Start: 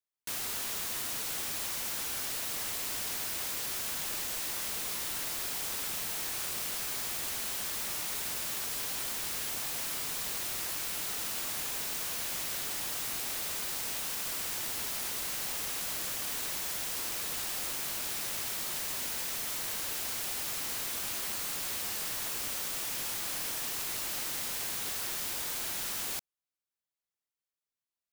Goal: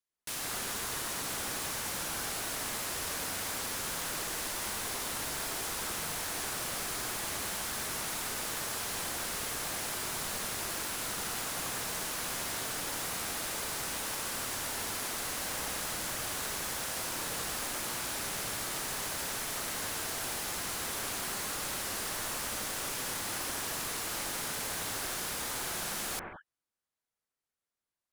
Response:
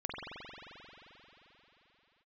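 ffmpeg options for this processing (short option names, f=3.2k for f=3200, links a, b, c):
-filter_complex "[1:a]atrim=start_sample=2205,afade=t=out:st=0.17:d=0.01,atrim=end_sample=7938,asetrate=23373,aresample=44100[a];[0:a][a]afir=irnorm=-1:irlink=0"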